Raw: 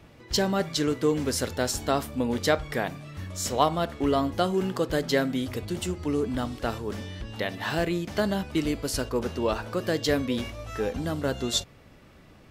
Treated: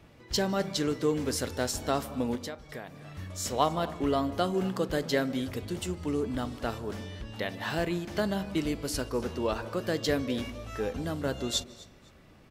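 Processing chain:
repeating echo 254 ms, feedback 27%, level −21.5 dB
0:02.35–0:03.17: downward compressor 6 to 1, threshold −34 dBFS, peak gain reduction 16 dB
on a send at −18 dB: convolution reverb RT60 0.70 s, pre-delay 142 ms
on the sum: level −3.5 dB

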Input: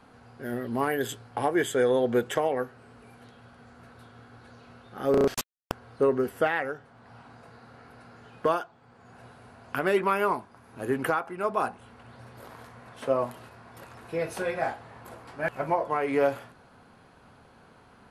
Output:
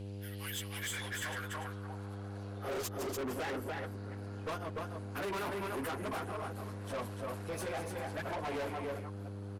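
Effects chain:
delay that plays each chunk backwards 346 ms, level −9.5 dB
time stretch by phase vocoder 0.53×
single-tap delay 291 ms −6.5 dB
high-pass filter sweep 2,800 Hz → 180 Hz, 0:00.67–0:03.73
hum with harmonics 100 Hz, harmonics 5, −34 dBFS −8 dB per octave
bass and treble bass −8 dB, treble +7 dB
tube saturation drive 35 dB, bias 0.35

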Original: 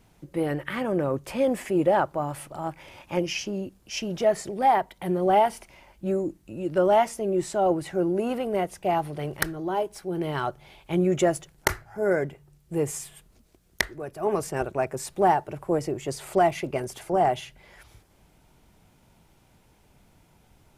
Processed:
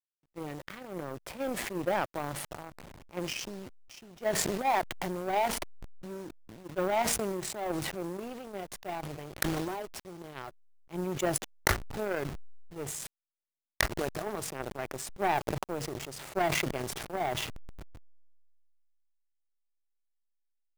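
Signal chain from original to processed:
hold until the input has moved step −36.5 dBFS
power curve on the samples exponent 2
level that may fall only so fast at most 23 dB per second

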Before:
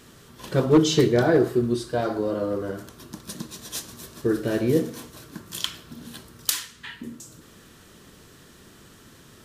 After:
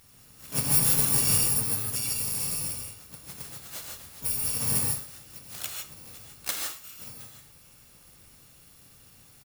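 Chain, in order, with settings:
samples in bit-reversed order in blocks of 128 samples
pitch-shifted copies added −3 semitones −4 dB, +4 semitones −6 dB, +12 semitones −8 dB
reverb whose tail is shaped and stops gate 180 ms rising, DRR 0.5 dB
level −9 dB

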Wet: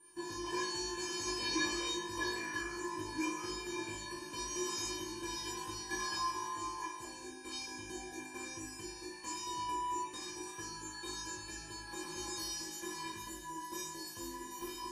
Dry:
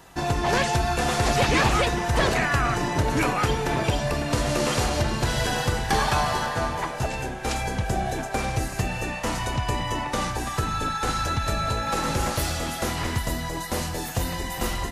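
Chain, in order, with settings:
steady tone 9,200 Hz −45 dBFS
tuned comb filter 340 Hz, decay 0.39 s, harmonics odd, mix 100%
on a send: flutter between parallel walls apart 3.3 metres, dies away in 0.67 s
on the sum: level +3.5 dB

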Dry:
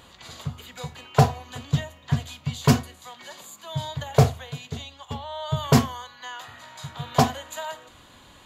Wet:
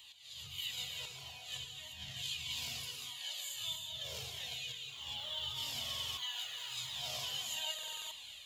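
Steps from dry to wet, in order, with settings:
peak hold with a rise ahead of every peak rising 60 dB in 0.51 s
high-pass filter 56 Hz 6 dB per octave
automatic gain control gain up to 5 dB
drawn EQ curve 120 Hz 0 dB, 360 Hz −19 dB, 1,500 Hz −22 dB, 2,900 Hz +3 dB, 13,000 Hz +9 dB
0:04.68–0:07.02: centre clipping without the shift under −43 dBFS
brickwall limiter −22 dBFS, peak gain reduction 18.5 dB
mains-hum notches 50/100/150/200 Hz
volume swells 387 ms
three-way crossover with the lows and the highs turned down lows −24 dB, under 480 Hz, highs −13 dB, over 3,400 Hz
reverb whose tail is shaped and stops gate 390 ms flat, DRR 1.5 dB
buffer that repeats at 0:05.80/0:07.74, samples 2,048, times 7
flanger whose copies keep moving one way falling 1.6 Hz
level +3 dB

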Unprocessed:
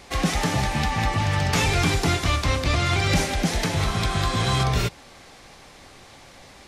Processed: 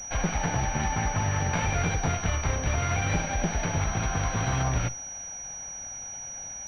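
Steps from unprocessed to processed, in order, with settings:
lower of the sound and its delayed copy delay 1.3 ms
downward compressor 2 to 1, threshold −25 dBFS, peak gain reduction 5 dB
on a send at −17 dB: convolution reverb, pre-delay 7 ms
on the sum: switching amplifier with a slow clock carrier 5,800 Hz

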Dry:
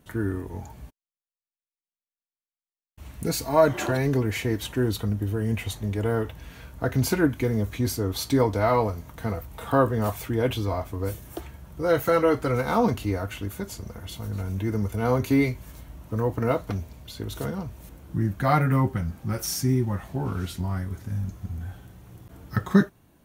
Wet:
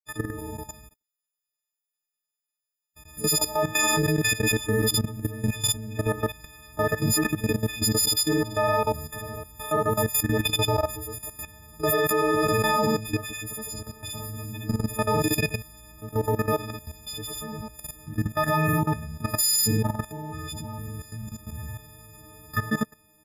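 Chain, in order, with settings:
every partial snapped to a pitch grid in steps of 6 semitones
granular cloud 100 ms, grains 20 per second, pitch spread up and down by 0 semitones
output level in coarse steps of 13 dB
level +4 dB

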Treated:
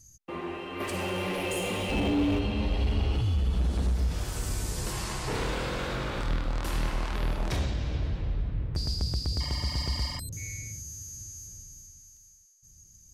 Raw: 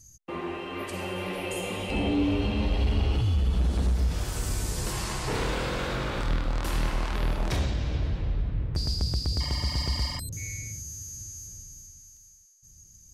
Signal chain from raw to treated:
0:00.80–0:02.39: power curve on the samples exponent 0.7
level −2 dB

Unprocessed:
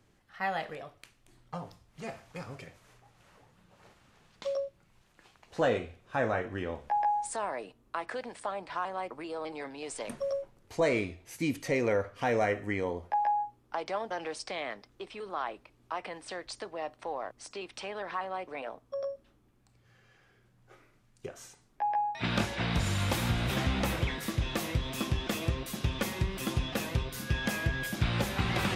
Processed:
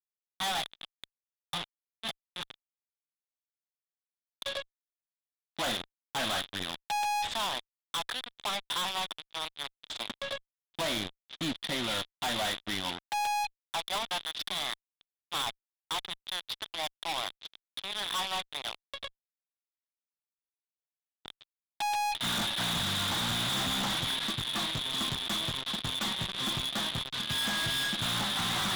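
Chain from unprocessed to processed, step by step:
high-pass filter 190 Hz 12 dB per octave
phaser with its sweep stopped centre 1,100 Hz, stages 4
fuzz pedal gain 41 dB, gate −41 dBFS
transistor ladder low-pass 3,700 Hz, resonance 80%
soft clipping −37.5 dBFS, distortion −5 dB
level +8 dB

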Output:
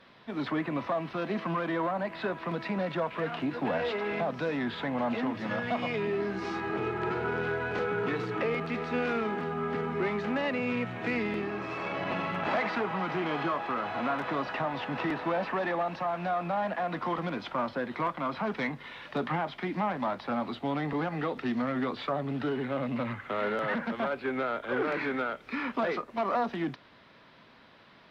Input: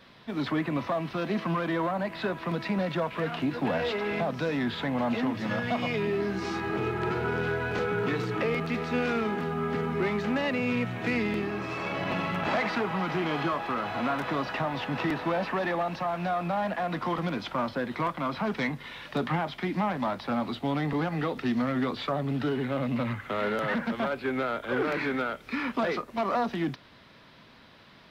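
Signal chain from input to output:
low-pass filter 2,700 Hz 6 dB per octave
low-shelf EQ 200 Hz −8 dB

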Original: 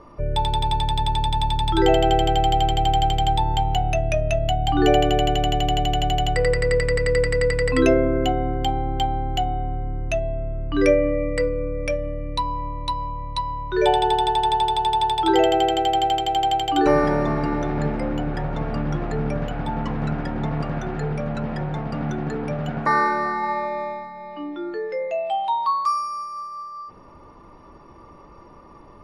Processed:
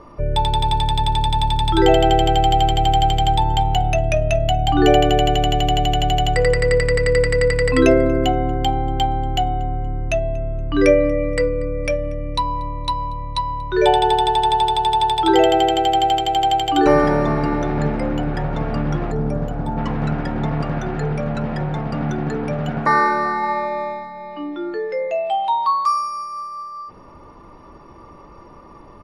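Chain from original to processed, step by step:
0:19.11–0:19.78: parametric band 2,600 Hz −12 dB 2 octaves
repeating echo 236 ms, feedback 33%, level −24 dB
level +3.5 dB

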